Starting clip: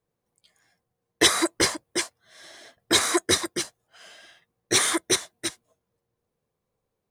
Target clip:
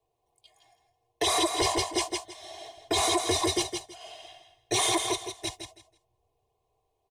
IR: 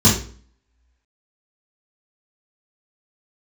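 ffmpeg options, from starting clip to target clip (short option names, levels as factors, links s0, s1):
-filter_complex "[0:a]acrossover=split=150|970|7300[s0][s1][s2][s3];[s0]dynaudnorm=f=560:g=5:m=2.51[s4];[s4][s1][s2][s3]amix=inputs=4:normalize=0,aecho=1:1:2.8:0.82,asplit=3[s5][s6][s7];[s5]afade=t=out:st=5.01:d=0.02[s8];[s6]acompressor=threshold=0.02:ratio=2,afade=t=in:st=5.01:d=0.02,afade=t=out:st=5.47:d=0.02[s9];[s7]afade=t=in:st=5.47:d=0.02[s10];[s8][s9][s10]amix=inputs=3:normalize=0,firequalizer=gain_entry='entry(150,0);entry(250,-10);entry(370,-1);entry(520,4);entry(890,10);entry(1400,-15);entry(2600,3);entry(4500,-2);entry(8100,-3);entry(15000,-6)':delay=0.05:min_phase=1,aecho=1:1:162|324|486:0.398|0.0836|0.0176,alimiter=limit=0.158:level=0:latency=1:release=21"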